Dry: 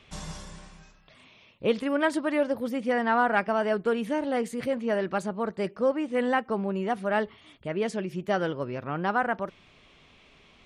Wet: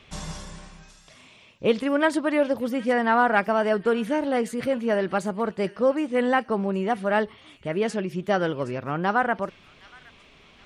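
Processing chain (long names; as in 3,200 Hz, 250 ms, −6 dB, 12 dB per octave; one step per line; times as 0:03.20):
delay with a high-pass on its return 768 ms, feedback 40%, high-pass 2,500 Hz, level −14 dB
level +3.5 dB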